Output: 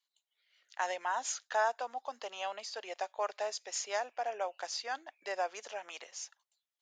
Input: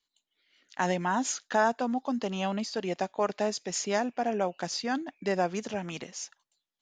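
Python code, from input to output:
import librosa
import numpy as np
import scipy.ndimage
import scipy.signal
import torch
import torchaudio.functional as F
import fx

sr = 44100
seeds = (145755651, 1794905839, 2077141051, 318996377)

y = scipy.signal.sosfilt(scipy.signal.butter(4, 550.0, 'highpass', fs=sr, output='sos'), x)
y = y * 10.0 ** (-4.5 / 20.0)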